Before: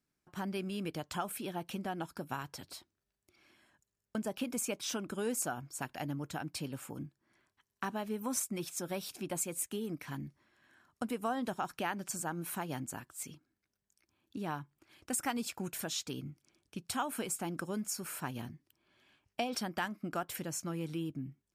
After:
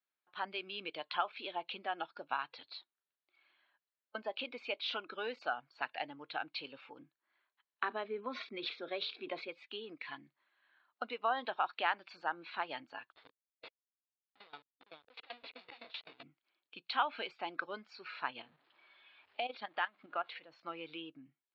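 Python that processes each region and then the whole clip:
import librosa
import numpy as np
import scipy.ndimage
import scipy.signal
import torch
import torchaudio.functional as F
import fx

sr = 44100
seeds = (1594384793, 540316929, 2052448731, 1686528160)

y = fx.chain(x, sr, fx.cabinet(low_hz=120.0, low_slope=12, high_hz=5000.0, hz=(240.0, 410.0, 890.0, 2800.0, 4600.0), db=(6, 7, -7, -6, -4)),
    fx.sustainer(db_per_s=100.0), at=(7.83, 9.49))
y = fx.chain(y, sr, fx.echo_single(ms=453, db=-4.5),
    fx.schmitt(flips_db=-40.5),
    fx.tremolo_decay(direction='decaying', hz=7.8, depth_db=22), at=(13.12, 16.23))
y = fx.chain(y, sr, fx.zero_step(step_db=-48.5),
    fx.high_shelf(hz=5300.0, db=-10.0),
    fx.level_steps(step_db=12), at=(18.42, 20.62))
y = scipy.signal.sosfilt(scipy.signal.butter(2, 750.0, 'highpass', fs=sr, output='sos'), y)
y = fx.noise_reduce_blind(y, sr, reduce_db=10)
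y = scipy.signal.sosfilt(scipy.signal.cheby1(6, 1.0, 4300.0, 'lowpass', fs=sr, output='sos'), y)
y = y * 10.0 ** (5.5 / 20.0)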